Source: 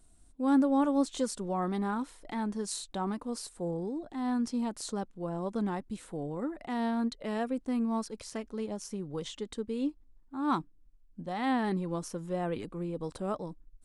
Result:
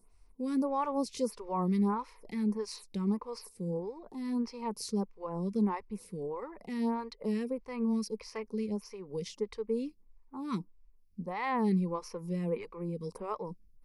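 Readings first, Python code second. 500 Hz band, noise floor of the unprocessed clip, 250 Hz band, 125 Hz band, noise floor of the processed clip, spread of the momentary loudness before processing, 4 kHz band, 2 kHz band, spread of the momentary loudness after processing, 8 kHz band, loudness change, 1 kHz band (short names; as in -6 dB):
-0.5 dB, -60 dBFS, -2.0 dB, +2.0 dB, -62 dBFS, 10 LU, -3.5 dB, -3.5 dB, 10 LU, -6.0 dB, -1.5 dB, -2.0 dB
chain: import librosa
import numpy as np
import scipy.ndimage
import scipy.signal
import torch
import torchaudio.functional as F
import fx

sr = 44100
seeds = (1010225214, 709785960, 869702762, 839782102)

y = fx.ripple_eq(x, sr, per_octave=0.85, db=12)
y = fx.stagger_phaser(y, sr, hz=1.6)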